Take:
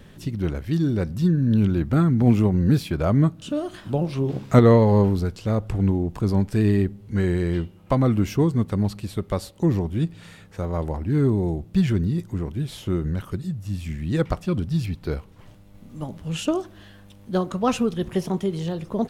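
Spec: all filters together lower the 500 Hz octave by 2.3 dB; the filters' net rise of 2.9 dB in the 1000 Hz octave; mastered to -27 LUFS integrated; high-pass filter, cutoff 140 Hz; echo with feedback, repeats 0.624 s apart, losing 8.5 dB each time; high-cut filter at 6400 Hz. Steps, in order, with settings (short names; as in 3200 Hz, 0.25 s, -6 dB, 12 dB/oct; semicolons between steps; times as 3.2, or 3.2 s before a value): HPF 140 Hz; LPF 6400 Hz; bell 500 Hz -4 dB; bell 1000 Hz +5 dB; feedback echo 0.624 s, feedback 38%, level -8.5 dB; gain -2.5 dB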